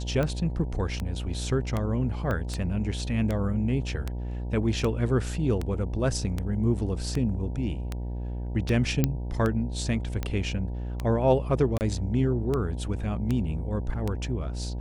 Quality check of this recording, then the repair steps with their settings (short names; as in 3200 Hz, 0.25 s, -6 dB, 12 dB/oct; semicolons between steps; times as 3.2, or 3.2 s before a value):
buzz 60 Hz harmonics 16 -32 dBFS
tick 78 rpm -16 dBFS
2.31 pop -18 dBFS
9.04 pop -9 dBFS
11.78–11.81 gap 29 ms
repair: de-click; de-hum 60 Hz, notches 16; interpolate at 11.78, 29 ms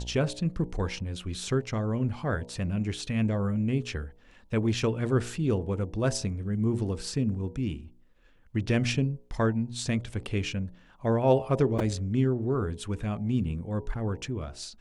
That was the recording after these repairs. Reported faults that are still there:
2.31 pop